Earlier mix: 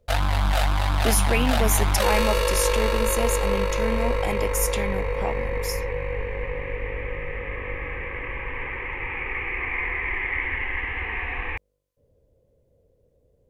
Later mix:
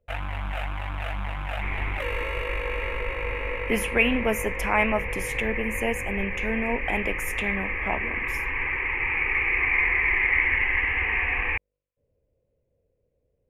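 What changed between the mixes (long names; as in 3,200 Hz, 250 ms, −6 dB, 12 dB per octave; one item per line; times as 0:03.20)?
speech: entry +2.65 s
first sound −9.5 dB
master: add high shelf with overshoot 3,400 Hz −10.5 dB, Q 3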